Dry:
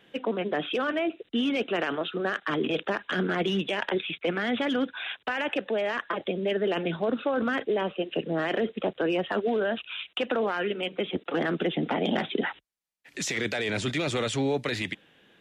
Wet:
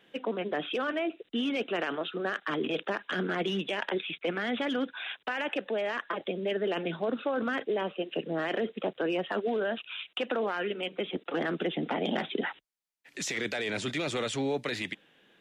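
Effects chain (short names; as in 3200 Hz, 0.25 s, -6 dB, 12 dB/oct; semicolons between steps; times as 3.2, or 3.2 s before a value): bell 67 Hz -12 dB 1.4 oct; gain -3 dB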